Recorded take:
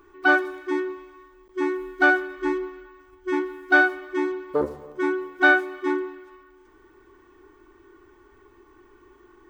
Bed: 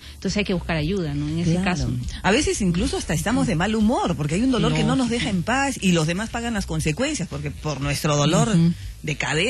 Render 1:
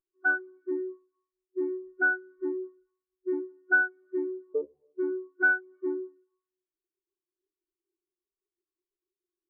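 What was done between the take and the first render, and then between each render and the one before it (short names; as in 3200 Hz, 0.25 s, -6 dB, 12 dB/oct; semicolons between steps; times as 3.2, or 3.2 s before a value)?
compressor 2.5:1, threshold -28 dBFS, peak gain reduction 11 dB; spectral expander 2.5:1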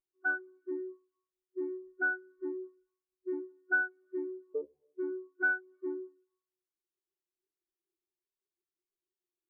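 gain -6 dB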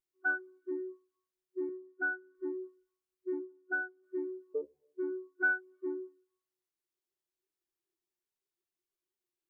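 1.69–2.35 speaker cabinet 210–2000 Hz, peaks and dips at 260 Hz +5 dB, 430 Hz -7 dB, 640 Hz -6 dB, 930 Hz +5 dB, 1300 Hz -5 dB; 3.38–4.02 LPF 1300 Hz -> 1100 Hz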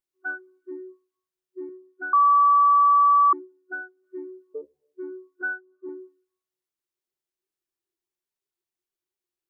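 2.13–3.33 bleep 1150 Hz -13.5 dBFS; 5.41–5.89 elliptic low-pass 1600 Hz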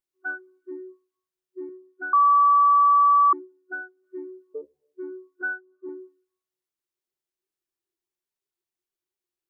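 nothing audible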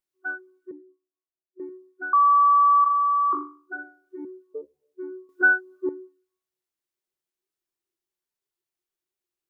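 0.71–1.6 double band-pass 440 Hz, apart 1 oct; 2.82–4.25 flutter echo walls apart 3.5 m, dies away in 0.41 s; 5.29–5.89 gain +11 dB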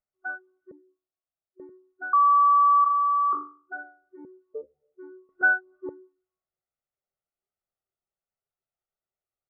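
LPF 1200 Hz 12 dB/oct; comb 1.5 ms, depth 82%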